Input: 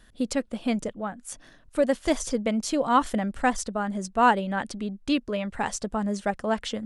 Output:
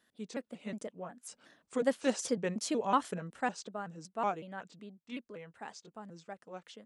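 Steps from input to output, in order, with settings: trilling pitch shifter -3 st, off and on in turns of 0.184 s; Doppler pass-by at 2.12, 5 m/s, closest 4 m; HPF 220 Hz 12 dB/oct; gain -4 dB

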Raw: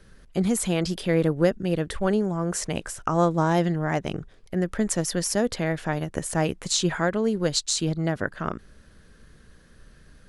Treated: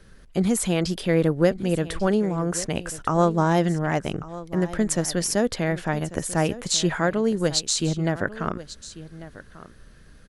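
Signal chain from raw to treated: echo 1.143 s -16.5 dB; gain +1.5 dB

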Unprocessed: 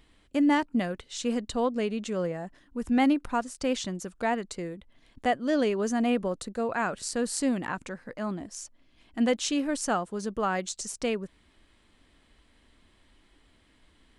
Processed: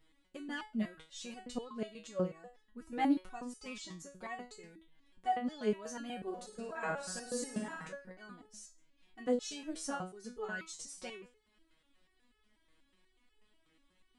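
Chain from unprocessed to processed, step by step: 6.16–7.88 flutter echo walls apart 9.4 m, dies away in 0.77 s; stepped resonator 8.2 Hz 160–430 Hz; gain +2.5 dB

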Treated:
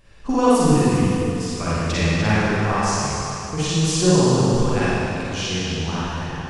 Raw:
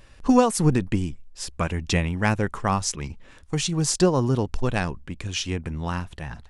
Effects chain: delay with a stepping band-pass 0.248 s, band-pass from 3600 Hz, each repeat -1.4 oct, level -7 dB; reverb RT60 2.5 s, pre-delay 38 ms, DRR -10 dB; gain -5.5 dB

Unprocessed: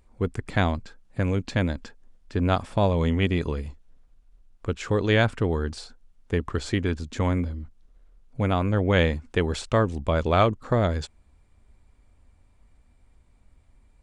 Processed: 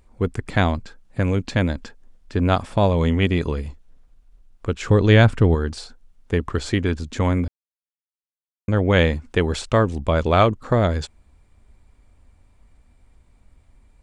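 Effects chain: 4.83–5.55 low shelf 220 Hz +8 dB; 7.48–8.68 mute; gain +4 dB

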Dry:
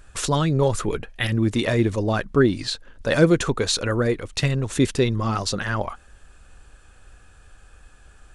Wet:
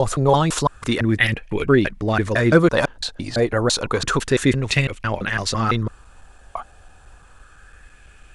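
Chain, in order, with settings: slices in reverse order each 0.168 s, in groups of 5; LFO bell 0.3 Hz 710–2500 Hz +9 dB; gain +1.5 dB

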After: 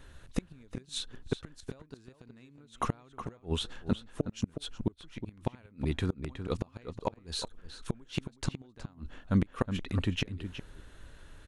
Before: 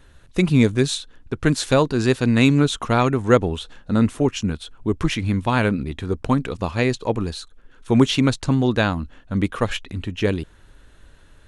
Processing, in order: compressor 5:1, threshold -17 dBFS, peak gain reduction 8 dB; flipped gate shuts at -14 dBFS, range -33 dB; outdoor echo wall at 63 m, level -9 dB; gain -2 dB

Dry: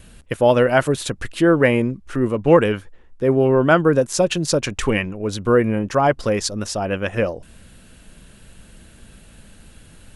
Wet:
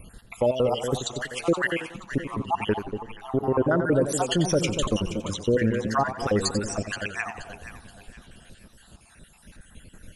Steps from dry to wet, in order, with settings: random spectral dropouts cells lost 64%; limiter -13.5 dBFS, peak gain reduction 11.5 dB; echo with dull and thin repeats by turns 0.238 s, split 850 Hz, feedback 56%, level -7.5 dB; warbling echo 89 ms, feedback 37%, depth 125 cents, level -10.5 dB

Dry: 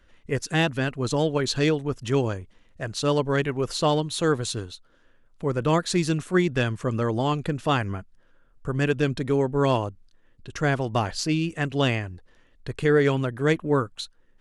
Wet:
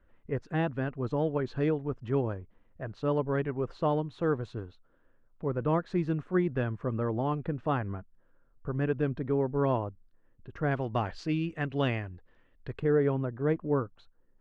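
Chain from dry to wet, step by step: LPF 1400 Hz 12 dB/oct, from 10.71 s 2500 Hz, from 12.8 s 1100 Hz; gain -5.5 dB

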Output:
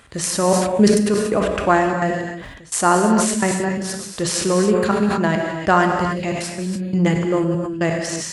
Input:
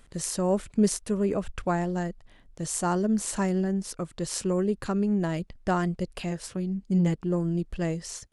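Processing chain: bell 180 Hz -2.5 dB 0.35 oct; step gate "xxxxxx.x.x.xx..x" 171 bpm -24 dB; HPF 49 Hz 24 dB/oct; bell 1700 Hz +7 dB 2.6 oct; non-linear reverb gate 0.33 s flat, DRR 3.5 dB; sustainer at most 42 dB/s; gain +7 dB

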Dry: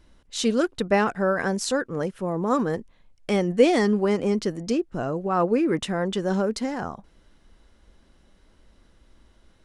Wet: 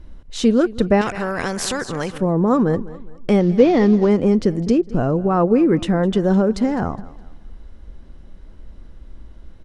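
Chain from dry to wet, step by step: 3.4–4.09 CVSD 32 kbps; feedback echo 0.207 s, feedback 34%, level -20 dB; in parallel at +2 dB: compressor, threshold -25 dBFS, peak gain reduction 13 dB; on the sum: tilt -2.5 dB/oct; 1.01–2.18 spectral compressor 2:1; gain -1 dB

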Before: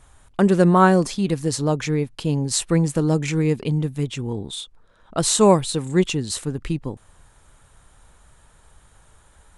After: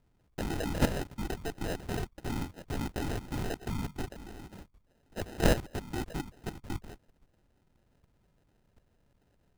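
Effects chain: LPC vocoder at 8 kHz whisper; level quantiser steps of 12 dB; sample-and-hold 39×; gain -9 dB

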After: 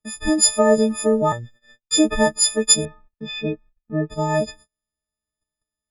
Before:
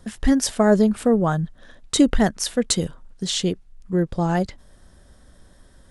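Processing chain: frequency quantiser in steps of 6 st; 1.32–1.98 robotiser 118 Hz; 2.85–4.1 LPF 2600 Hz 24 dB/oct; gate -41 dBFS, range -36 dB; dynamic EQ 560 Hz, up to +7 dB, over -32 dBFS, Q 0.83; gain -4.5 dB

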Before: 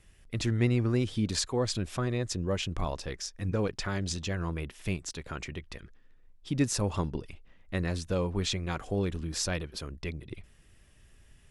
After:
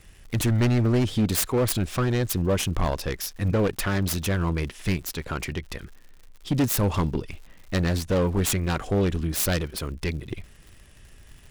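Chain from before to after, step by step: self-modulated delay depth 0.34 ms; overloaded stage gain 25.5 dB; crackle 120/s -49 dBFS; gain +8.5 dB

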